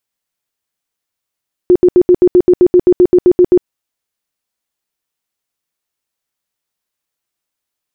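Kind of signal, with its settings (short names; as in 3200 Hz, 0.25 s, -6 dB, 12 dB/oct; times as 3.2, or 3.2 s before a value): tone bursts 359 Hz, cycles 20, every 0.13 s, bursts 15, -3 dBFS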